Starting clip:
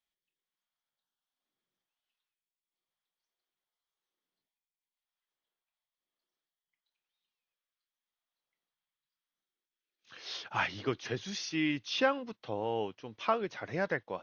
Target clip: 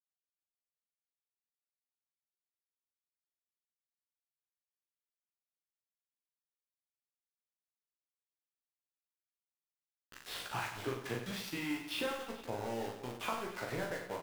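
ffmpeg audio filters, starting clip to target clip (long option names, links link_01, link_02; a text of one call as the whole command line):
ffmpeg -i in.wav -filter_complex "[0:a]lowpass=2900,acompressor=threshold=-39dB:ratio=10,aeval=exprs='val(0)*gte(abs(val(0)),0.00562)':channel_layout=same,asplit=2[link_01][link_02];[link_02]adelay=17,volume=-4.5dB[link_03];[link_01][link_03]amix=inputs=2:normalize=0,asplit=2[link_04][link_05];[link_05]aecho=0:1:40|96|174.4|284.2|437.8:0.631|0.398|0.251|0.158|0.1[link_06];[link_04][link_06]amix=inputs=2:normalize=0,volume=2dB" out.wav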